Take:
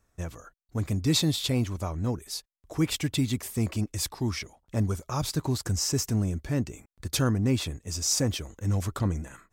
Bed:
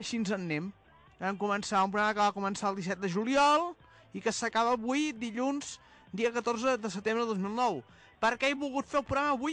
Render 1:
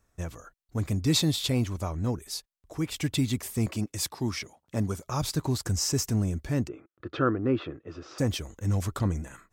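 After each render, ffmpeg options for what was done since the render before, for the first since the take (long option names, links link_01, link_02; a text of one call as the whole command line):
ffmpeg -i in.wav -filter_complex "[0:a]asettb=1/sr,asplit=3[link_01][link_02][link_03];[link_01]atrim=end=3.664[link_04];[link_02]atrim=start=3.66:end=5.08,asetpts=PTS-STARTPTS,afade=type=in:duration=0.004:curve=qsin,afade=type=out:start_time=1.416:duration=0.004:curve=qsin,highpass=110[link_05];[link_03]atrim=start=5.076[link_06];[link_04][link_05]acrossfade=duration=0.004:curve1=hsin:curve2=qsin[link_07];[link_07][link_06]acrossfade=duration=0.004:curve1=qsin:curve2=hsin,asplit=3[link_08][link_09][link_10];[link_08]afade=type=out:start_time=6.67:duration=0.02[link_11];[link_09]highpass=160,equalizer=frequency=200:width_type=q:width=4:gain=-9,equalizer=frequency=340:width_type=q:width=4:gain=9,equalizer=frequency=500:width_type=q:width=4:gain=4,equalizer=frequency=880:width_type=q:width=4:gain=-6,equalizer=frequency=1300:width_type=q:width=4:gain=10,equalizer=frequency=2200:width_type=q:width=4:gain=-7,lowpass=frequency=2700:width=0.5412,lowpass=frequency=2700:width=1.3066,afade=type=in:start_time=6.67:duration=0.02,afade=type=out:start_time=8.18:duration=0.02[link_12];[link_10]afade=type=in:start_time=8.18:duration=0.02[link_13];[link_11][link_12][link_13]amix=inputs=3:normalize=0,asplit=2[link_14][link_15];[link_14]atrim=end=2.96,asetpts=PTS-STARTPTS,afade=type=out:start_time=2.33:duration=0.63:silence=0.473151[link_16];[link_15]atrim=start=2.96,asetpts=PTS-STARTPTS,afade=type=in:duration=0.004:curve=hsin:silence=0.473151[link_17];[link_16][link_17]concat=n=2:v=0:a=1" out.wav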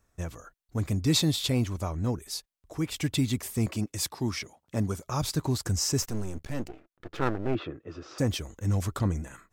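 ffmpeg -i in.wav -filter_complex "[0:a]asettb=1/sr,asplit=3[link_01][link_02][link_03];[link_01]atrim=end=6.024[link_04];[link_02]atrim=start=6.02:end=7.55,asetpts=PTS-STARTPTS,afade=type=in:duration=0.004:curve=qsin,afade=type=out:start_time=1.526:duration=0.004:curve=qsin,aeval=exprs='max(val(0),0)':channel_layout=same[link_05];[link_03]atrim=start=7.546[link_06];[link_04][link_05]acrossfade=duration=0.004:curve1=hsin:curve2=qsin[link_07];[link_07][link_06]acrossfade=duration=0.004:curve1=qsin:curve2=hsin" out.wav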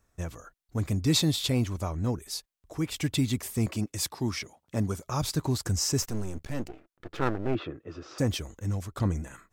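ffmpeg -i in.wav -filter_complex "[0:a]asplit=2[link_01][link_02];[link_01]atrim=end=8.97,asetpts=PTS-STARTPTS,afade=type=out:start_time=8.5:duration=0.47:silence=0.237137[link_03];[link_02]atrim=start=8.97,asetpts=PTS-STARTPTS,afade=type=in:duration=0.004:curve=hsin:silence=0.237137[link_04];[link_03][link_04]concat=n=2:v=0:a=1" out.wav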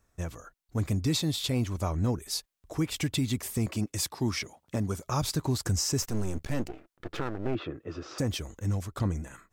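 ffmpeg -i in.wav -af "dynaudnorm=framelen=350:gausssize=9:maxgain=3.5dB,alimiter=limit=-19dB:level=0:latency=1:release=336" out.wav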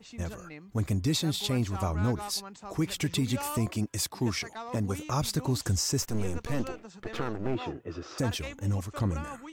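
ffmpeg -i in.wav -i bed.wav -filter_complex "[1:a]volume=-12.5dB[link_01];[0:a][link_01]amix=inputs=2:normalize=0" out.wav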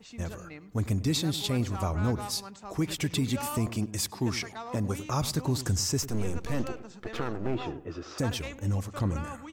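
ffmpeg -i in.wav -filter_complex "[0:a]asplit=2[link_01][link_02];[link_02]adelay=101,lowpass=frequency=1300:poles=1,volume=-14dB,asplit=2[link_03][link_04];[link_04]adelay=101,lowpass=frequency=1300:poles=1,volume=0.4,asplit=2[link_05][link_06];[link_06]adelay=101,lowpass=frequency=1300:poles=1,volume=0.4,asplit=2[link_07][link_08];[link_08]adelay=101,lowpass=frequency=1300:poles=1,volume=0.4[link_09];[link_01][link_03][link_05][link_07][link_09]amix=inputs=5:normalize=0" out.wav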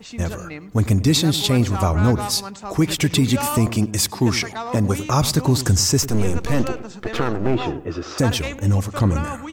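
ffmpeg -i in.wav -af "volume=11dB" out.wav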